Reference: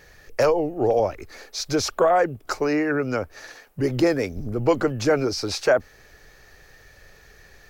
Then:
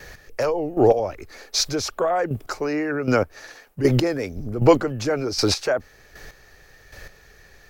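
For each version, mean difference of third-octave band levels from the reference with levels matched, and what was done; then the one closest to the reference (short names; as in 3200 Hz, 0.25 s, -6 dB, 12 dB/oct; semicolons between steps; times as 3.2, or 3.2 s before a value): 2.5 dB: gate with hold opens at -46 dBFS; in parallel at +1 dB: limiter -20 dBFS, peak gain reduction 9.5 dB; on the sum: chopper 1.3 Hz, depth 65%, duty 20%; gain +2.5 dB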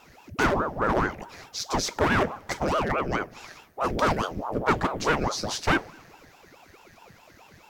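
7.5 dB: one-sided fold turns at -17.5 dBFS; two-slope reverb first 0.23 s, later 1.7 s, from -18 dB, DRR 11.5 dB; ring modulator with a swept carrier 520 Hz, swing 85%, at 4.7 Hz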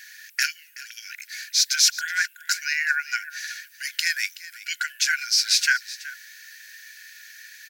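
18.5 dB: brick-wall FIR high-pass 1400 Hz; high shelf 5200 Hz +7 dB; echo 0.375 s -17 dB; gain +7 dB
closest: first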